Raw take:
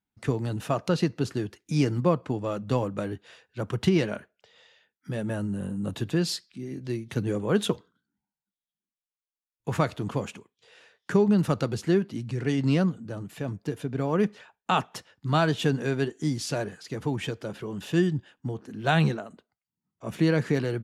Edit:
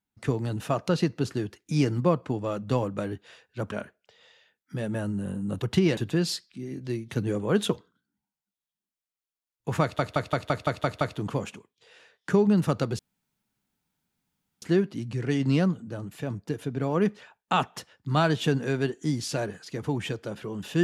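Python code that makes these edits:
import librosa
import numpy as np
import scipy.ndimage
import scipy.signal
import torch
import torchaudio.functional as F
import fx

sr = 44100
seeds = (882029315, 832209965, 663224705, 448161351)

y = fx.edit(x, sr, fx.move(start_s=3.72, length_s=0.35, to_s=5.97),
    fx.stutter(start_s=9.82, slice_s=0.17, count=8),
    fx.insert_room_tone(at_s=11.8, length_s=1.63), tone=tone)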